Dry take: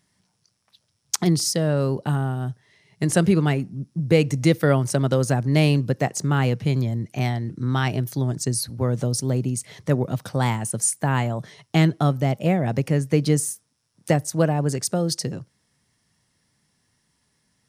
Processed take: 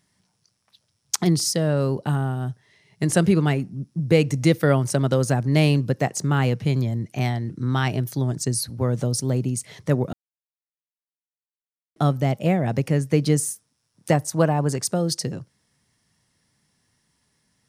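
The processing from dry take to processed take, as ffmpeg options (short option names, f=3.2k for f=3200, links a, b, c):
-filter_complex "[0:a]asettb=1/sr,asplit=3[a][b][c];[a]atrim=end=14.124[d];[b]atrim=start=14.12:end=14.92,asetpts=PTS-STARTPTS,afade=t=in:d=0.004:c=qsin,afade=t=out:st=0.796:d=0.004:c=qsin,equalizer=f=1k:t=o:w=0.77:g=5.5[e];[c]atrim=start=14.916[f];[d][e]acrossfade=d=0.004:c1=hsin:c2=qsin[g];[g][f]acrossfade=d=0.004:c1=qsin:c2=hsin,asplit=3[h][i][j];[h]atrim=end=10.13,asetpts=PTS-STARTPTS,afade=t=out:st=10.126:d=0.004:c=hsin[k];[i]atrim=start=10.13:end=11.96,asetpts=PTS-STARTPTS,volume=0[l];[j]atrim=start=11.96,asetpts=PTS-STARTPTS,afade=t=in:d=0.004:c=hsin[m];[k][l][m]concat=n=3:v=0:a=1"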